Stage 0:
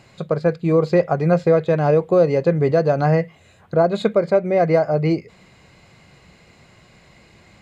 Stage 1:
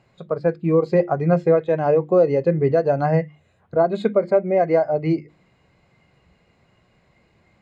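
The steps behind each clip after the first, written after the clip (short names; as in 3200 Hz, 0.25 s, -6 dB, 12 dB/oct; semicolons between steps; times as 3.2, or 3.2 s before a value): spectral noise reduction 8 dB; high shelf 2700 Hz -11 dB; notches 50/100/150/200/250/300/350 Hz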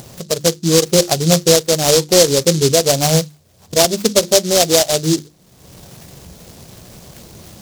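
upward compressor, threshold -28 dBFS; noise-modulated delay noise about 5200 Hz, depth 0.19 ms; gain +4.5 dB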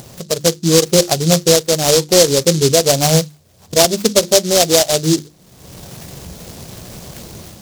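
AGC gain up to 5.5 dB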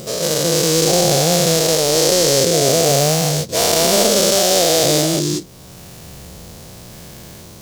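spectral dilation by 0.48 s; gain -9.5 dB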